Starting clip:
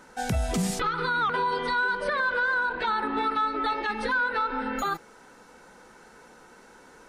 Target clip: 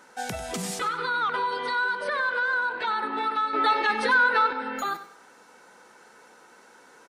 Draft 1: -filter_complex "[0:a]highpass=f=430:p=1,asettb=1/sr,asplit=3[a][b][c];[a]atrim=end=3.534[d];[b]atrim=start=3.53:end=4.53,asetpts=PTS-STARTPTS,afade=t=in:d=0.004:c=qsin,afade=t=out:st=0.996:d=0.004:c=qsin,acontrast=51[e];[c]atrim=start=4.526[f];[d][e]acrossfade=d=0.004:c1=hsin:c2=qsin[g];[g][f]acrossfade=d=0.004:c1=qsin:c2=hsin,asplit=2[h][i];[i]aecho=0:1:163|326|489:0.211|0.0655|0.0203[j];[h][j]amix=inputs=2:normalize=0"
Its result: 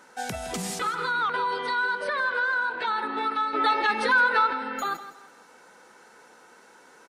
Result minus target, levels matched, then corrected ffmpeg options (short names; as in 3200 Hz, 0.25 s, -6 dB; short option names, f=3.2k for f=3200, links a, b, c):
echo 68 ms late
-filter_complex "[0:a]highpass=f=430:p=1,asettb=1/sr,asplit=3[a][b][c];[a]atrim=end=3.534[d];[b]atrim=start=3.53:end=4.53,asetpts=PTS-STARTPTS,afade=t=in:d=0.004:c=qsin,afade=t=out:st=0.996:d=0.004:c=qsin,acontrast=51[e];[c]atrim=start=4.526[f];[d][e]acrossfade=d=0.004:c1=hsin:c2=qsin[g];[g][f]acrossfade=d=0.004:c1=qsin:c2=hsin,asplit=2[h][i];[i]aecho=0:1:95|190|285:0.211|0.0655|0.0203[j];[h][j]amix=inputs=2:normalize=0"